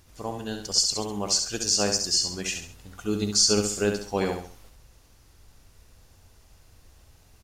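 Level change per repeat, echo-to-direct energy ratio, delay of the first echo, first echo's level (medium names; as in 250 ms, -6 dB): -8.5 dB, -5.5 dB, 68 ms, -6.0 dB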